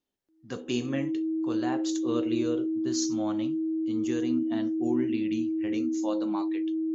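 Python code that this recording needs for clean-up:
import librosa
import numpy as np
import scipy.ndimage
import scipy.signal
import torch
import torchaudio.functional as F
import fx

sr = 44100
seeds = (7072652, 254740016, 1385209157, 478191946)

y = fx.notch(x, sr, hz=320.0, q=30.0)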